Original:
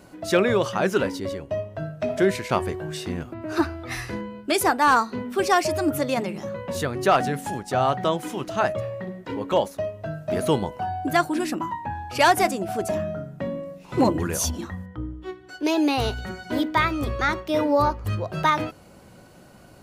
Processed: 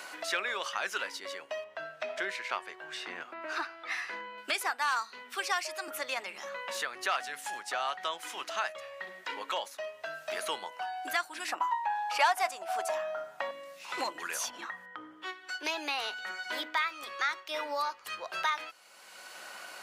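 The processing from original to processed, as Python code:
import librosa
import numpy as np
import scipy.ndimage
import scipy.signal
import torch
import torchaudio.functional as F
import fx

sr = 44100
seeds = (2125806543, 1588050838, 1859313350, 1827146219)

y = fx.lowpass(x, sr, hz=2100.0, slope=6, at=(1.64, 4.38))
y = fx.highpass(y, sr, hz=260.0, slope=24, at=(5.36, 5.88))
y = fx.peak_eq(y, sr, hz=830.0, db=14.5, octaves=1.4, at=(11.48, 13.51))
y = scipy.signal.sosfilt(scipy.signal.butter(2, 1400.0, 'highpass', fs=sr, output='sos'), y)
y = fx.high_shelf(y, sr, hz=9600.0, db=-8.5)
y = fx.band_squash(y, sr, depth_pct=70)
y = y * librosa.db_to_amplitude(-2.5)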